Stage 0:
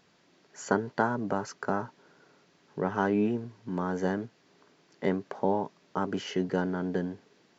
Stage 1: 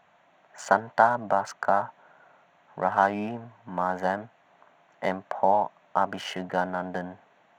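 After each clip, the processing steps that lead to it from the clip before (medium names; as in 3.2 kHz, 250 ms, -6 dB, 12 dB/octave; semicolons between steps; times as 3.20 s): local Wiener filter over 9 samples; resonant low shelf 520 Hz -8.5 dB, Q 3; trim +5.5 dB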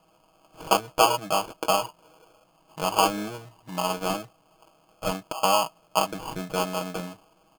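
comb 6.3 ms, depth 76%; sample-and-hold 23×; trim -2 dB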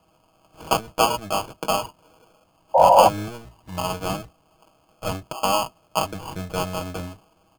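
octave divider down 1 oct, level 0 dB; painted sound noise, 2.74–3.09 s, 500–1000 Hz -13 dBFS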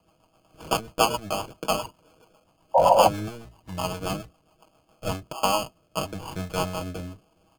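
rotary cabinet horn 7.5 Hz, later 0.8 Hz, at 4.66 s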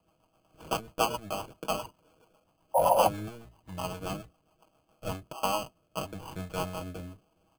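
careless resampling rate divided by 4×, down filtered, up hold; trim -6 dB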